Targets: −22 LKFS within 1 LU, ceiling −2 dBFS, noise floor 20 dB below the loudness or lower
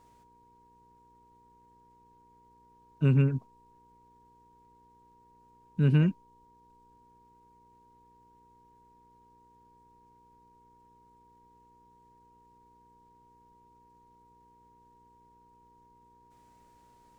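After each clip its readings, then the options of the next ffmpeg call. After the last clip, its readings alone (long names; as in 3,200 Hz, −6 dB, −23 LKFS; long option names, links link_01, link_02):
mains hum 60 Hz; hum harmonics up to 480 Hz; level of the hum −70 dBFS; interfering tone 950 Hz; level of the tone −59 dBFS; integrated loudness −27.0 LKFS; sample peak −13.0 dBFS; target loudness −22.0 LKFS
→ -af "bandreject=frequency=60:width_type=h:width=4,bandreject=frequency=120:width_type=h:width=4,bandreject=frequency=180:width_type=h:width=4,bandreject=frequency=240:width_type=h:width=4,bandreject=frequency=300:width_type=h:width=4,bandreject=frequency=360:width_type=h:width=4,bandreject=frequency=420:width_type=h:width=4,bandreject=frequency=480:width_type=h:width=4"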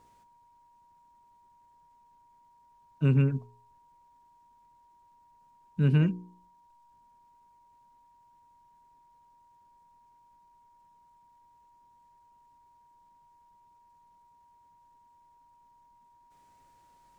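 mains hum none found; interfering tone 950 Hz; level of the tone −59 dBFS
→ -af "bandreject=frequency=950:width=30"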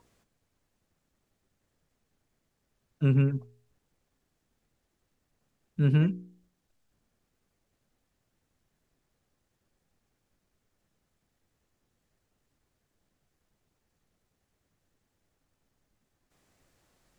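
interfering tone none found; integrated loudness −26.5 LKFS; sample peak −13.5 dBFS; target loudness −22.0 LKFS
→ -af "volume=4.5dB"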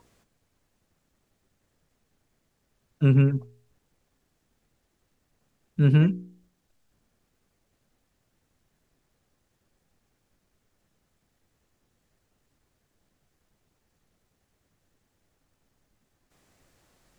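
integrated loudness −22.0 LKFS; sample peak −9.0 dBFS; background noise floor −75 dBFS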